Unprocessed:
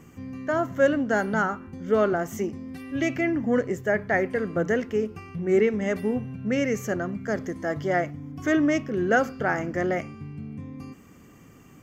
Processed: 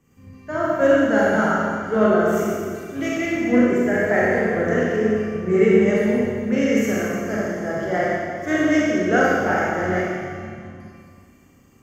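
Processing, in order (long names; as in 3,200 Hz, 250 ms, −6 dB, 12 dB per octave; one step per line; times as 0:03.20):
four-comb reverb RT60 2.6 s, combs from 29 ms, DRR −6.5 dB
multiband upward and downward expander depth 40%
level −1.5 dB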